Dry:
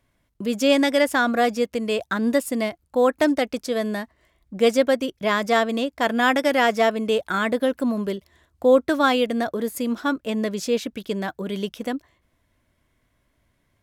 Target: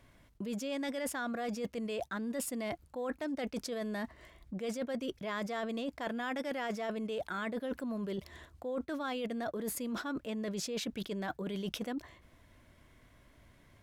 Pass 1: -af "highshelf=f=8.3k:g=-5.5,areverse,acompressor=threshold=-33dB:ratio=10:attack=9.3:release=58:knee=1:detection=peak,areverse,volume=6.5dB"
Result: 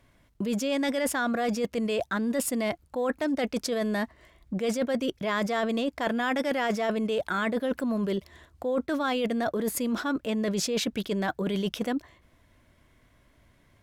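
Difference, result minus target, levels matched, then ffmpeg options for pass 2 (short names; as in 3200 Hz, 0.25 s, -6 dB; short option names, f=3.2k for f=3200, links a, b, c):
compressor: peak gain reduction -9.5 dB
-af "highshelf=f=8.3k:g=-5.5,areverse,acompressor=threshold=-43.5dB:ratio=10:attack=9.3:release=58:knee=1:detection=peak,areverse,volume=6.5dB"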